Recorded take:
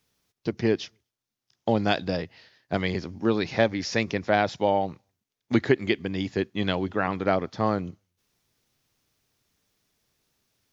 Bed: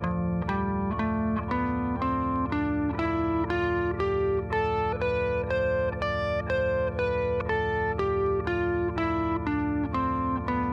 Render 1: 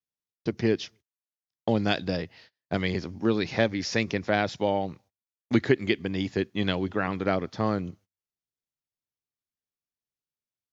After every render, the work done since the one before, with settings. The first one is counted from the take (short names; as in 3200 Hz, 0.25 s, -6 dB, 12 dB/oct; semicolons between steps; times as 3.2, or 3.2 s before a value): gate -52 dBFS, range -27 dB; dynamic EQ 830 Hz, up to -5 dB, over -33 dBFS, Q 1.1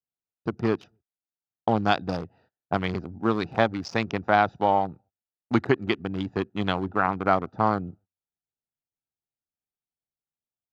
Wiener smoothing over 41 samples; band shelf 1000 Hz +11 dB 1.2 oct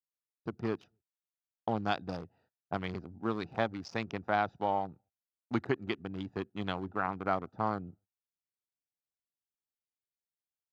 gain -9.5 dB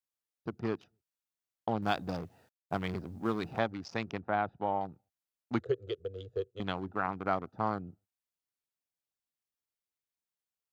1.82–3.59 G.711 law mismatch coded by mu; 4.2–4.81 air absorption 360 m; 5.6–6.6 EQ curve 120 Hz 0 dB, 240 Hz -28 dB, 480 Hz +13 dB, 880 Hz -25 dB, 1300 Hz -9 dB, 2300 Hz -16 dB, 3300 Hz -1 dB, 5000 Hz -10 dB, 7100 Hz -2 dB, 11000 Hz -12 dB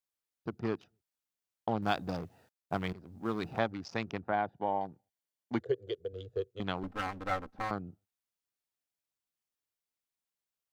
2.93–3.43 fade in, from -16.5 dB; 4.32–6.13 notch comb 1300 Hz; 6.83–7.71 minimum comb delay 3.8 ms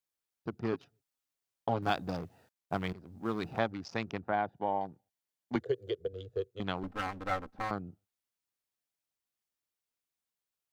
0.72–1.9 comb 7.3 ms, depth 60%; 5.55–6.07 three-band squash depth 70%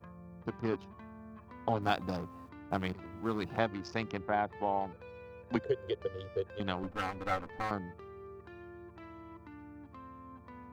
add bed -23 dB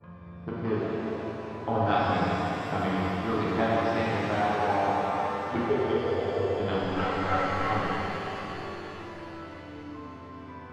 air absorption 200 m; shimmer reverb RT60 3.7 s, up +7 st, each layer -8 dB, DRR -8.5 dB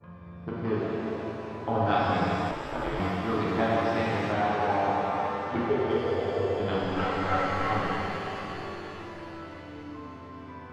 2.51–3 ring modulator 150 Hz; 4.32–5.91 air absorption 58 m